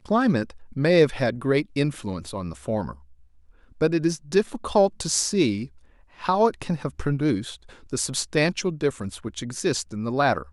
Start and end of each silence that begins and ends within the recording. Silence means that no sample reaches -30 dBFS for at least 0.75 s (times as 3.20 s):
2.91–3.81 s